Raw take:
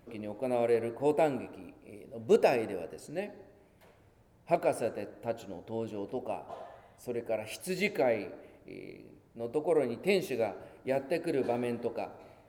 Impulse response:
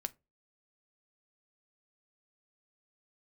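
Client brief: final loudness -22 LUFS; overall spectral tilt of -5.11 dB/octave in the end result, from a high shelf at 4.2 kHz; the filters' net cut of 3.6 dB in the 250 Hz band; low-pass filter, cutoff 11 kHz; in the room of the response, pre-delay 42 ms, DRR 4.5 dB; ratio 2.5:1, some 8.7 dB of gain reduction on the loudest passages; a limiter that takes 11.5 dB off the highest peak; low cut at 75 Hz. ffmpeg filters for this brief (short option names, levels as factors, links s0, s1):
-filter_complex "[0:a]highpass=75,lowpass=11000,equalizer=f=250:t=o:g=-5,highshelf=f=4200:g=-6,acompressor=threshold=0.02:ratio=2.5,alimiter=level_in=2.99:limit=0.0631:level=0:latency=1,volume=0.335,asplit=2[s0][s1];[1:a]atrim=start_sample=2205,adelay=42[s2];[s1][s2]afir=irnorm=-1:irlink=0,volume=0.708[s3];[s0][s3]amix=inputs=2:normalize=0,volume=11.2"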